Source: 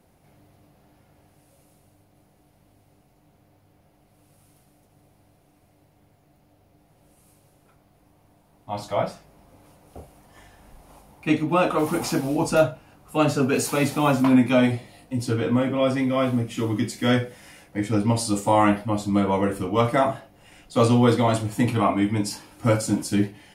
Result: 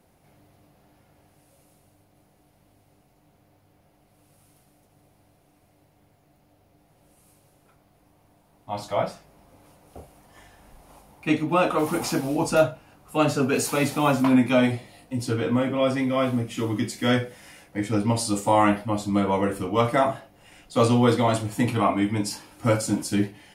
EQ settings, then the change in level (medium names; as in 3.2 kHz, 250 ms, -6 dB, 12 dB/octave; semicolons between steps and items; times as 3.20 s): bass shelf 340 Hz -2.5 dB; 0.0 dB